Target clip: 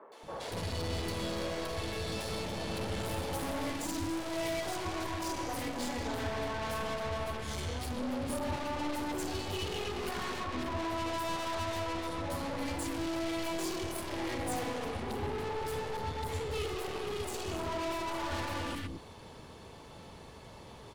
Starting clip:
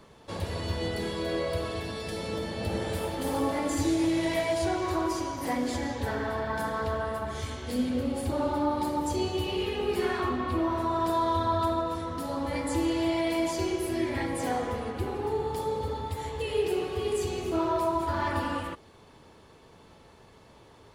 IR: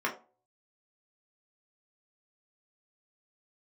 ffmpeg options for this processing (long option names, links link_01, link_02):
-filter_complex "[0:a]aeval=exprs='(tanh(89.1*val(0)+0.25)-tanh(0.25))/89.1':channel_layout=same,acrossover=split=350|1500[link_01][link_02][link_03];[link_03]adelay=120[link_04];[link_01]adelay=230[link_05];[link_05][link_02][link_04]amix=inputs=3:normalize=0,volume=6dB"